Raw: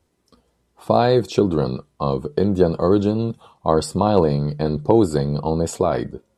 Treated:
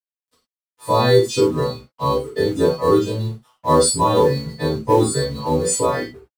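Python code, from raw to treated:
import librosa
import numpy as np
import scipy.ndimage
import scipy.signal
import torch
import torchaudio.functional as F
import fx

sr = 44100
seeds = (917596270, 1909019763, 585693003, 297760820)

p1 = fx.freq_snap(x, sr, grid_st=2)
p2 = fx.dereverb_blind(p1, sr, rt60_s=1.0)
p3 = fx.ripple_eq(p2, sr, per_octave=1.0, db=6)
p4 = fx.quant_float(p3, sr, bits=2)
p5 = p3 + (p4 * librosa.db_to_amplitude(-5.0))
p6 = np.sign(p5) * np.maximum(np.abs(p5) - 10.0 ** (-42.5 / 20.0), 0.0)
p7 = fx.rev_gated(p6, sr, seeds[0], gate_ms=130, shape='falling', drr_db=-6.5)
y = p7 * librosa.db_to_amplitude(-9.5)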